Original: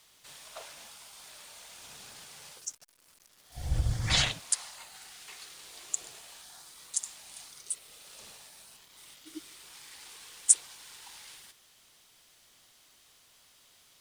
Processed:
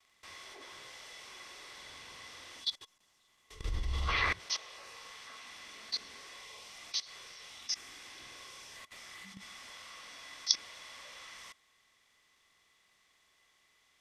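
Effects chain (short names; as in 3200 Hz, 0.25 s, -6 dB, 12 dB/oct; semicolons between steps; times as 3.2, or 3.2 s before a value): pitch shift by moving bins -8.5 st; gate with hold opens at -54 dBFS; level quantiser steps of 20 dB; small resonant body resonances 1100/2000/3400 Hz, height 12 dB, ringing for 45 ms; gain +7.5 dB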